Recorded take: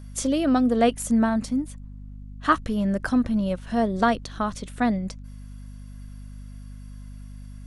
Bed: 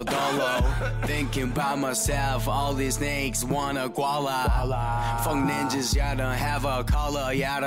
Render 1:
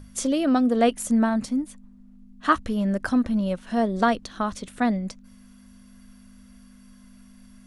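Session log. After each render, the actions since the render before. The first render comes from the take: notches 50/100/150 Hz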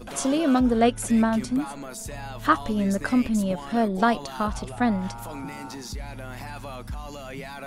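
add bed -11 dB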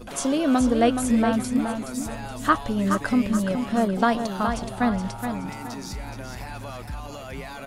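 feedback echo 0.422 s, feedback 36%, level -7 dB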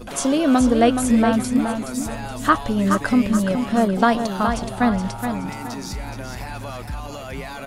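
gain +4 dB; limiter -3 dBFS, peak gain reduction 1 dB

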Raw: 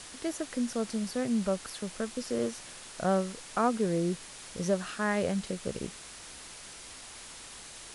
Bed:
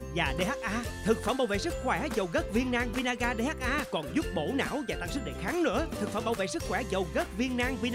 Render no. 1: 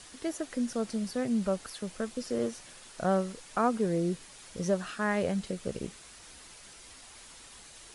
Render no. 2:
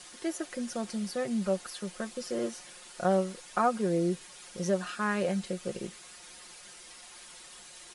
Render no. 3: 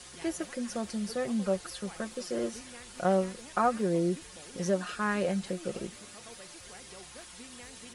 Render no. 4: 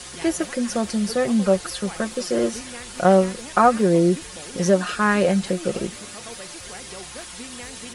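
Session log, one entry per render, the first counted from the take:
denoiser 6 dB, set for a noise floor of -47 dBFS
low shelf 150 Hz -11 dB; comb 5.6 ms
add bed -21 dB
gain +11 dB

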